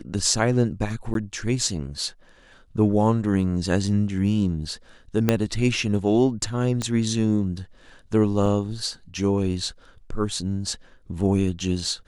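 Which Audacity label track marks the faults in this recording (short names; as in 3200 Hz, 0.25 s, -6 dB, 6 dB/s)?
1.140000	1.150000	gap
5.290000	5.290000	pop -5 dBFS
6.820000	6.820000	pop -14 dBFS
8.460000	8.460000	gap 2.5 ms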